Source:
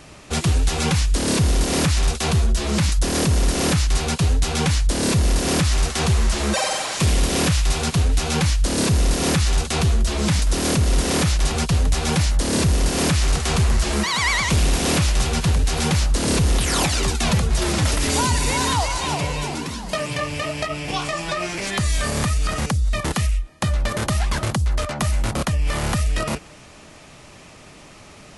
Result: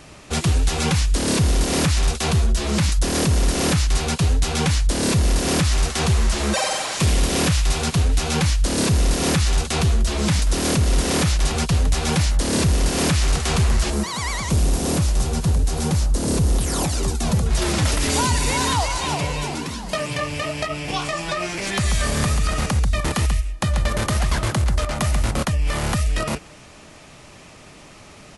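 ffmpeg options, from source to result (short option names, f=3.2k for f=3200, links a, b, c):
-filter_complex "[0:a]asettb=1/sr,asplit=3[a][b][c];[a]atrim=end=13.904[d];[b]atrim=start=13.9:end=17.46,asetpts=PTS-STARTPTS,afade=t=in:d=0.004:c=qsin,afade=t=out:st=3.556:d=0.004:c=qsin,equalizer=f=2.4k:t=o:w=2.3:g=-10[e];[c]atrim=start=17.456[f];[d][e]acrossfade=d=0.004:c1=hsin:c2=qsin[g];[g][f]acrossfade=d=0.004:c1=qsin:c2=hsin,asplit=3[h][i][j];[h]afade=t=out:st=21.65:d=0.02[k];[i]aecho=1:1:137:0.473,afade=t=in:st=21.65:d=0.02,afade=t=out:st=25.43:d=0.02[l];[j]afade=t=in:st=25.43:d=0.02[m];[k][l][m]amix=inputs=3:normalize=0"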